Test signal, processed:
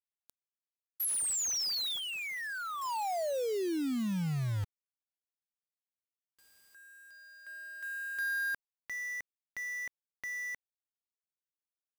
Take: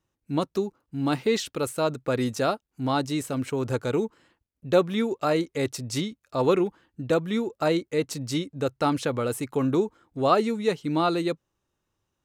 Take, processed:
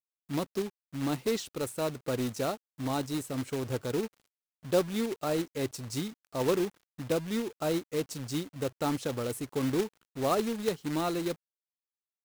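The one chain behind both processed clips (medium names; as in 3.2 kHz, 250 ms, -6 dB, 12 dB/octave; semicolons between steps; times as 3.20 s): peaking EQ 1.9 kHz -6 dB 2.1 oct; companded quantiser 4-bit; trim -5.5 dB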